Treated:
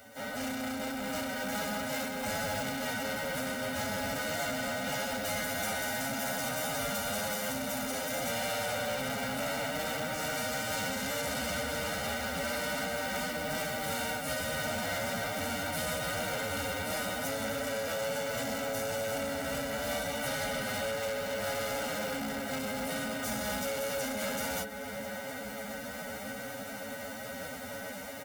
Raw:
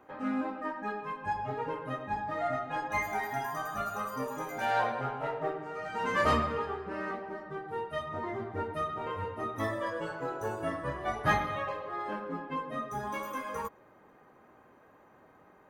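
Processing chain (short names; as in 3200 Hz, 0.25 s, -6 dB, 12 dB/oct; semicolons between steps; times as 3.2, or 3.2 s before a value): spectral contrast lowered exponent 0.31; small resonant body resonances 270/550/1900 Hz, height 17 dB, ringing for 90 ms; harmoniser -4 st -4 dB; AGC gain up to 14 dB; limiter -10.5 dBFS, peak gain reduction 9 dB; on a send at -20 dB: reverb RT60 4.4 s, pre-delay 59 ms; on the sum: compressor 8:1, threshold -25 dBFS, peak gain reduction 9.5 dB; time stretch by phase-locked vocoder 1.8×; soft clip -32.5 dBFS, distortion -8 dB; HPF 46 Hz; comb 1.4 ms, depth 78%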